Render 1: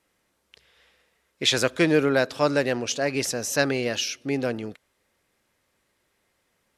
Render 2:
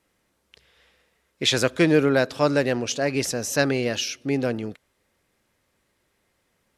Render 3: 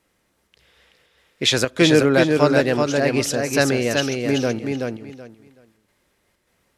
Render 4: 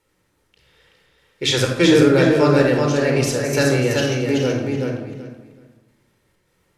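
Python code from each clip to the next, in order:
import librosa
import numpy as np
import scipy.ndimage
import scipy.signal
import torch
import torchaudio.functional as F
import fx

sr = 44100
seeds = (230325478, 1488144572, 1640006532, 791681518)

y1 = fx.low_shelf(x, sr, hz=330.0, db=4.5)
y2 = fx.chopper(y1, sr, hz=1.7, depth_pct=60, duty_pct=80)
y2 = fx.echo_feedback(y2, sr, ms=378, feedback_pct=21, wet_db=-4.0)
y2 = F.gain(torch.from_numpy(y2), 3.0).numpy()
y3 = fx.room_shoebox(y2, sr, seeds[0], volume_m3=2900.0, walls='furnished', distance_m=4.4)
y3 = F.gain(torch.from_numpy(y3), -3.5).numpy()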